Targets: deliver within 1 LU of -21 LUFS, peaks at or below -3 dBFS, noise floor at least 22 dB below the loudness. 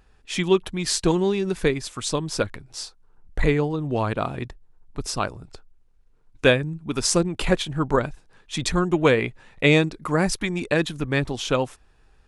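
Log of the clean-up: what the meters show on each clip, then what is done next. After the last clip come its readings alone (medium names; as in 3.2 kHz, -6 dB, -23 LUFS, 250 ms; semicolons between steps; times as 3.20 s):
loudness -23.5 LUFS; peak level -3.5 dBFS; loudness target -21.0 LUFS
-> trim +2.5 dB; peak limiter -3 dBFS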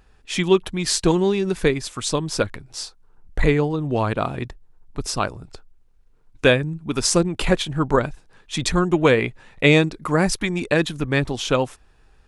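loudness -21.0 LUFS; peak level -3.0 dBFS; noise floor -55 dBFS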